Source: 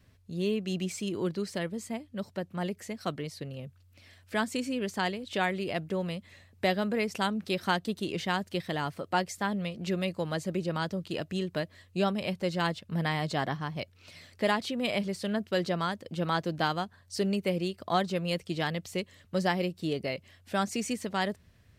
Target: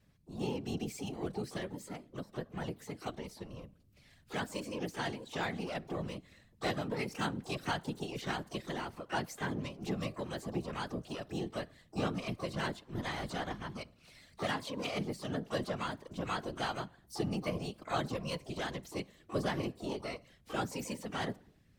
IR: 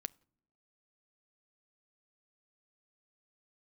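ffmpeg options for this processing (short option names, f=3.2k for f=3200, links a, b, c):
-filter_complex "[1:a]atrim=start_sample=2205,afade=t=out:st=0.35:d=0.01,atrim=end_sample=15876,asetrate=33957,aresample=44100[a];[0:a][a]afir=irnorm=-1:irlink=0,asplit=2[b][c];[c]asetrate=88200,aresample=44100,atempo=0.5,volume=-10dB[d];[b][d]amix=inputs=2:normalize=0,afftfilt=real='hypot(re,im)*cos(2*PI*random(0))':imag='hypot(re,im)*sin(2*PI*random(1))':win_size=512:overlap=0.75"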